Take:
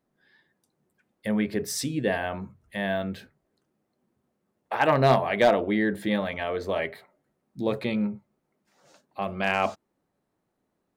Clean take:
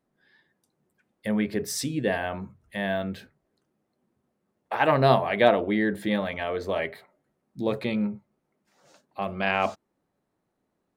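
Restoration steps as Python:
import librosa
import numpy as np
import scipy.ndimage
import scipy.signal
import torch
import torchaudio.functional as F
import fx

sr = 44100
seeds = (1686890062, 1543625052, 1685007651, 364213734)

y = fx.fix_declip(x, sr, threshold_db=-11.0)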